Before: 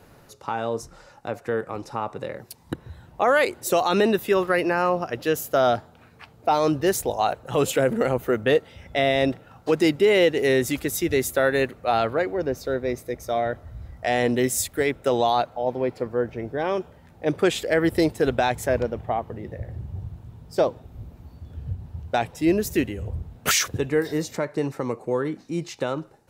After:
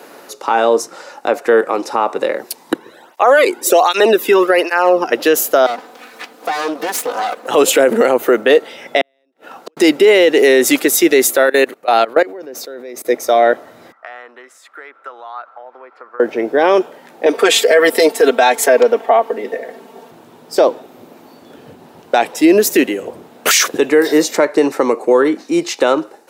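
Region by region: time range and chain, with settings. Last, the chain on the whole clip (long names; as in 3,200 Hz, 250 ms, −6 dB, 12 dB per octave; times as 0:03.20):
0:02.78–0:05.12: notch filter 4,200 Hz, Q 18 + through-zero flanger with one copy inverted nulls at 1.3 Hz, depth 1.8 ms
0:05.66–0:07.48: lower of the sound and its delayed copy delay 4 ms + downward compressor 5 to 1, threshold −31 dBFS + one half of a high-frequency compander encoder only
0:09.01–0:09.77: high-pass filter 140 Hz + downward compressor, threshold −32 dBFS + gate with flip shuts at −29 dBFS, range −42 dB
0:11.46–0:13.05: high-shelf EQ 8,400 Hz +6 dB + output level in coarse steps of 22 dB
0:13.92–0:16.20: downward compressor 12 to 1, threshold −27 dBFS + resonant band-pass 1,300 Hz, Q 5.4
0:17.26–0:20.11: high-pass filter 310 Hz + comb filter 4.4 ms, depth 90%
whole clip: high-pass filter 280 Hz 24 dB per octave; boost into a limiter +16.5 dB; level −1 dB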